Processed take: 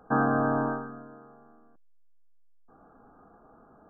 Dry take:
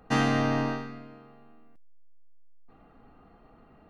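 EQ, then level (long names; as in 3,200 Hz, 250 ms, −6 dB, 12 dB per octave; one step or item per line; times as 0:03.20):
linear-phase brick-wall low-pass 1,700 Hz
low-shelf EQ 170 Hz −11 dB
+3.0 dB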